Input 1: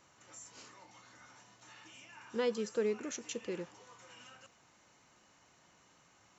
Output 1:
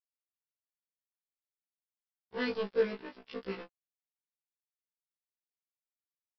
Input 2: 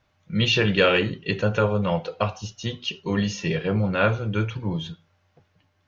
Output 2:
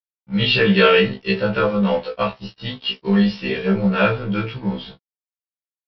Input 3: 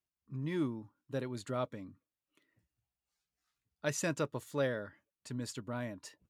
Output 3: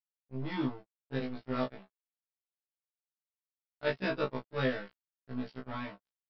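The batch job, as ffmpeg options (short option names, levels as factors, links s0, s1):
-filter_complex "[0:a]aresample=11025,aeval=exprs='sgn(val(0))*max(abs(val(0))-0.00794,0)':c=same,aresample=44100,asplit=2[s0][s1];[s1]adelay=20,volume=0.631[s2];[s0][s2]amix=inputs=2:normalize=0,afftfilt=real='re*1.73*eq(mod(b,3),0)':imag='im*1.73*eq(mod(b,3),0)':win_size=2048:overlap=0.75,volume=2.11"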